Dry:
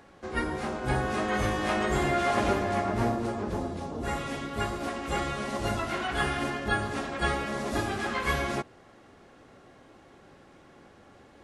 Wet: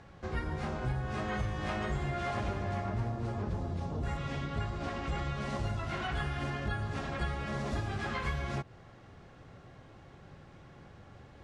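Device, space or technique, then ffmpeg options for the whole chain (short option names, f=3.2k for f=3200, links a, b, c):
jukebox: -filter_complex "[0:a]lowpass=6.6k,lowshelf=f=190:t=q:w=1.5:g=8.5,acompressor=threshold=-30dB:ratio=5,asettb=1/sr,asplit=3[a][b][c];[a]atrim=end=4.174[d];[b]atrim=start=4.17:end=5.41,asetpts=PTS-STARTPTS,afade=t=in:d=0.004:c=qsin,afade=t=out:st=1.236:d=0.004:c=qsin,lowpass=7.3k[e];[c]atrim=start=5.406[f];[d][e]acrossfade=d=0.004:c1=hsin:c2=qsin[g];[g][f]acrossfade=d=0.004:c1=qsin:c2=hsin,volume=-1.5dB"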